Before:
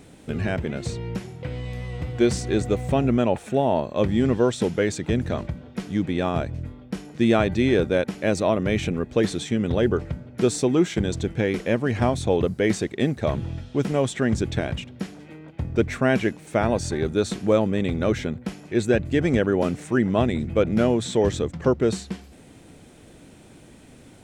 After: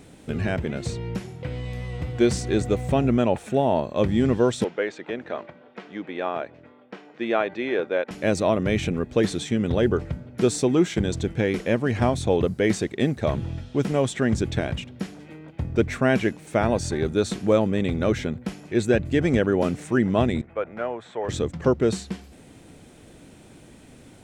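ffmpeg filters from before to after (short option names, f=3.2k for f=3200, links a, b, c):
-filter_complex "[0:a]asettb=1/sr,asplit=3[a][b][c];[a]atrim=end=4.644[d];[b]atrim=start=4.64:end=8.11,asetpts=PTS-STARTPTS,afade=t=in:d=0.004:c=qsin,afade=t=out:st=3.466:d=0.004:c=qsin,highpass=460,lowpass=2.6k[e];[c]atrim=start=8.106[f];[d][e]acrossfade=d=0.004:c1=hsin:c2=qsin[g];[g][f]acrossfade=d=0.004:c1=qsin:c2=hsin,asettb=1/sr,asplit=3[h][i][j];[h]atrim=end=20.414[k];[i]atrim=start=20.41:end=21.29,asetpts=PTS-STARTPTS,afade=t=in:d=0.004:c=qsin,afade=t=out:st=0.876:d=0.004:c=qsin,acrossover=split=570 2100:gain=0.0891 1 0.0631[l][m][n];[l][m][n]amix=inputs=3:normalize=0[o];[j]atrim=start=21.286[p];[k][o]acrossfade=d=0.004:c1=hsin:c2=qsin[q];[q][p]acrossfade=d=0.004:c1=qsin:c2=hsin"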